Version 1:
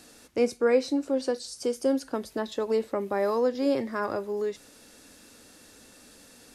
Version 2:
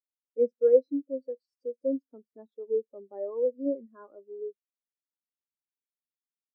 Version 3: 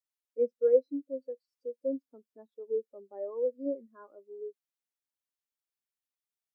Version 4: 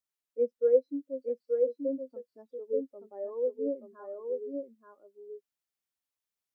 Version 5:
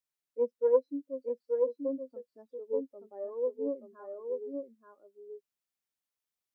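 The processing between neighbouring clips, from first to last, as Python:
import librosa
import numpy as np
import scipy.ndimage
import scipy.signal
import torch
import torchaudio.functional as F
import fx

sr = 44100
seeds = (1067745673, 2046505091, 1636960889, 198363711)

y1 = fx.spectral_expand(x, sr, expansion=2.5)
y1 = F.gain(torch.from_numpy(y1), 2.5).numpy()
y2 = fx.low_shelf(y1, sr, hz=500.0, db=-6.5)
y3 = y2 + 10.0 ** (-4.0 / 20.0) * np.pad(y2, (int(879 * sr / 1000.0), 0))[:len(y2)]
y4 = fx.self_delay(y3, sr, depth_ms=0.083)
y4 = F.gain(torch.from_numpy(y4), -1.5).numpy()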